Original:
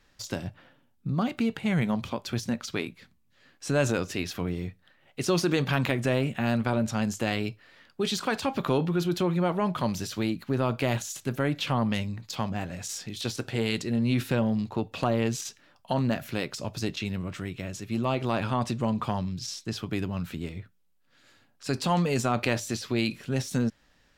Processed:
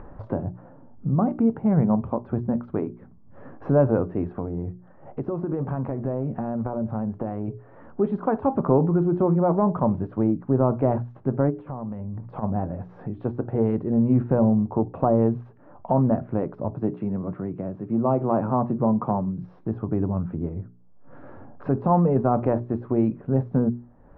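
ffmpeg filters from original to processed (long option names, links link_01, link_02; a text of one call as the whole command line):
ffmpeg -i in.wav -filter_complex "[0:a]asettb=1/sr,asplit=3[link_01][link_02][link_03];[link_01]atrim=end=4.344[link_04];[link_02]atrim=start=4.34:end=7.48,asetpts=PTS-STARTPTS,afade=type=in:duration=0.004:curve=qsin,afade=type=out:start_time=3.136:duration=0.004:curve=qsin,acompressor=threshold=-29dB:ratio=6:attack=3.2:release=140:knee=1:detection=peak[link_05];[link_03]atrim=start=7.476[link_06];[link_04][link_05]acrossfade=duration=0.004:curve1=hsin:curve2=qsin[link_07];[link_07][link_06]acrossfade=duration=0.004:curve1=qsin:curve2=hsin,asplit=3[link_08][link_09][link_10];[link_08]afade=type=out:start_time=11.49:duration=0.02[link_11];[link_09]acompressor=threshold=-36dB:ratio=10:attack=3.2:release=140:knee=1:detection=peak,afade=type=in:start_time=11.49:duration=0.02,afade=type=out:start_time=12.42:duration=0.02[link_12];[link_10]afade=type=in:start_time=12.42:duration=0.02[link_13];[link_11][link_12][link_13]amix=inputs=3:normalize=0,asettb=1/sr,asplit=3[link_14][link_15][link_16];[link_14]atrim=end=16.734[link_17];[link_15]atrim=start=16.73:end=19.44,asetpts=PTS-STARTPTS,afade=type=in:duration=0.004:curve=qsin,afade=type=out:start_time=2.706:duration=0.004:curve=qsin,highpass=frequency=120:width=0.5412,highpass=frequency=120:width=1.3066[link_18];[link_16]atrim=start=19.436[link_19];[link_17][link_18]acrossfade=duration=0.004:curve1=hsin:curve2=qsin[link_20];[link_20][link_19]acrossfade=duration=0.004:curve1=qsin:curve2=hsin,lowpass=frequency=1000:width=0.5412,lowpass=frequency=1000:width=1.3066,bandreject=frequency=60:width_type=h:width=6,bandreject=frequency=120:width_type=h:width=6,bandreject=frequency=180:width_type=h:width=6,bandreject=frequency=240:width_type=h:width=6,bandreject=frequency=300:width_type=h:width=6,bandreject=frequency=360:width_type=h:width=6,bandreject=frequency=420:width_type=h:width=6,acompressor=mode=upward:threshold=-34dB:ratio=2.5,volume=7dB" out.wav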